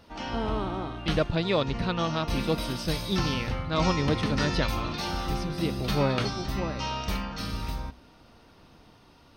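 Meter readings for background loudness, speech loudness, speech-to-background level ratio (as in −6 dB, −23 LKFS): −32.5 LKFS, −30.5 LKFS, 2.0 dB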